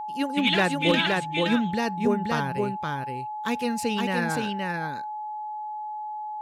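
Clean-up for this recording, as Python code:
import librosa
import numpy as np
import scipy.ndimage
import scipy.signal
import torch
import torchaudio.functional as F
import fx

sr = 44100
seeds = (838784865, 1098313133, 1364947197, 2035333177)

y = fx.fix_declip(x, sr, threshold_db=-11.5)
y = fx.notch(y, sr, hz=850.0, q=30.0)
y = fx.fix_echo_inverse(y, sr, delay_ms=520, level_db=-3.0)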